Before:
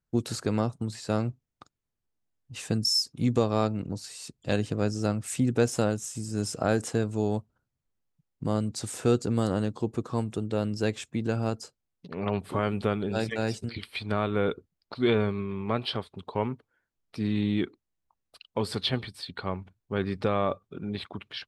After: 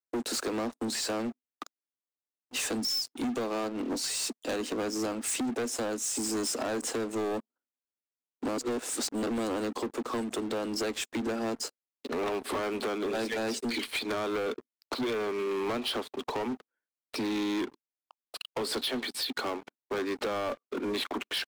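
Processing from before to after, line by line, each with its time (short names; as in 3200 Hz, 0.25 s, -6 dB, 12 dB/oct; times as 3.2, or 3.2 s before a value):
8.57–9.26 reverse
whole clip: steep high-pass 230 Hz 96 dB/oct; compressor 10:1, threshold -36 dBFS; sample leveller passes 5; gain -4.5 dB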